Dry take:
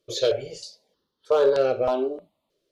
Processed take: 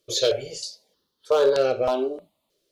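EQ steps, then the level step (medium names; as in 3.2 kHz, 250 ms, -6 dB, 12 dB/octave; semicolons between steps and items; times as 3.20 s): treble shelf 3.6 kHz +9.5 dB; 0.0 dB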